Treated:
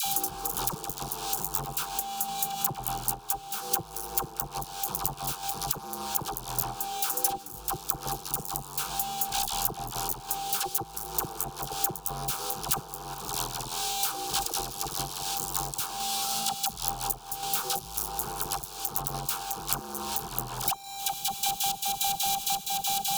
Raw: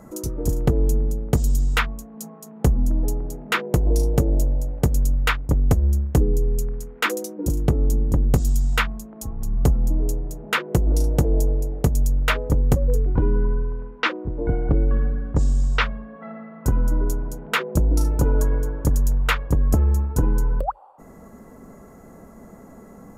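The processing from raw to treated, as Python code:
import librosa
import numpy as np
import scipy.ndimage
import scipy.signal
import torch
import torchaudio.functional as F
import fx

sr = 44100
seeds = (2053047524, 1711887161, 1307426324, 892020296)

p1 = x + 10.0 ** (-30.0 / 20.0) * np.sin(2.0 * np.pi * 790.0 * np.arange(len(x)) / sr)
p2 = fx.fuzz(p1, sr, gain_db=37.0, gate_db=-36.0)
p3 = fx.fixed_phaser(p2, sr, hz=390.0, stages=8)
p4 = p3 + fx.echo_tape(p3, sr, ms=405, feedback_pct=78, wet_db=-9.5, lp_hz=2800.0, drive_db=4.0, wow_cents=13, dry=0)
p5 = fx.level_steps(p4, sr, step_db=17)
p6 = fx.tilt_eq(p5, sr, slope=3.5)
p7 = fx.dispersion(p6, sr, late='lows', ms=57.0, hz=1000.0)
p8 = fx.tremolo_random(p7, sr, seeds[0], hz=3.5, depth_pct=55)
p9 = fx.high_shelf(p8, sr, hz=10000.0, db=8.5)
p10 = fx.band_squash(p9, sr, depth_pct=100)
y = p10 * librosa.db_to_amplitude(-4.5)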